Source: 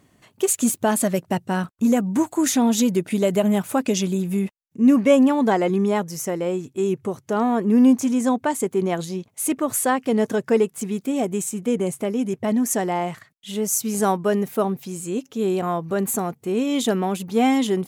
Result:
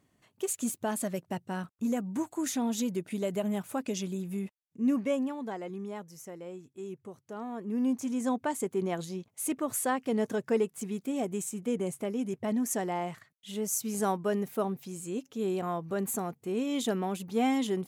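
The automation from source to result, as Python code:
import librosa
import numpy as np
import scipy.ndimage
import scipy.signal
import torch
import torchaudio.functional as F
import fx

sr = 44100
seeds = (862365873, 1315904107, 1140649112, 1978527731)

y = fx.gain(x, sr, db=fx.line((4.95, -12.0), (5.41, -18.5), (7.46, -18.5), (8.33, -9.0)))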